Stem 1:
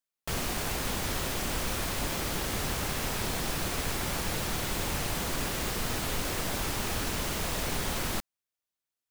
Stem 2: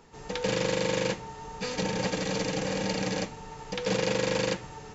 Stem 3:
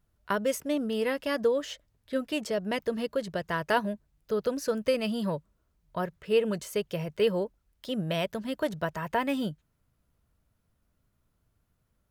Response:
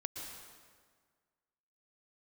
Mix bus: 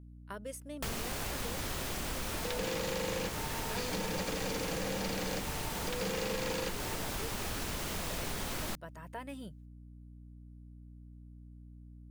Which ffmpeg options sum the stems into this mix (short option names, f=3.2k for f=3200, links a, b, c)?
-filter_complex "[0:a]adelay=550,volume=-0.5dB[a];[1:a]highpass=150,asoftclip=type=tanh:threshold=-24.5dB,adelay=2150,volume=3dB[b];[2:a]equalizer=f=9.5k:w=2.5:g=12,volume=-15.5dB[c];[a][b][c]amix=inputs=3:normalize=0,aeval=exprs='val(0)+0.00316*(sin(2*PI*60*n/s)+sin(2*PI*2*60*n/s)/2+sin(2*PI*3*60*n/s)/3+sin(2*PI*4*60*n/s)/4+sin(2*PI*5*60*n/s)/5)':c=same,acompressor=threshold=-35dB:ratio=3"